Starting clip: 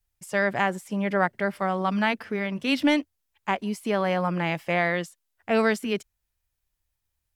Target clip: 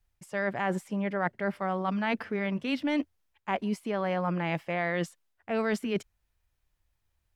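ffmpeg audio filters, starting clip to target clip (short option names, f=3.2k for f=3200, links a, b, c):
-af "highshelf=f=4.5k:g=-10.5,areverse,acompressor=threshold=-32dB:ratio=5,areverse,volume=5dB"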